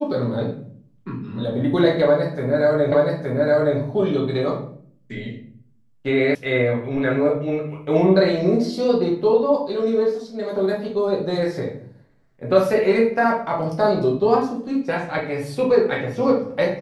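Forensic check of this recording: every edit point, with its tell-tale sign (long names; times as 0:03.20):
0:02.92: the same again, the last 0.87 s
0:06.35: cut off before it has died away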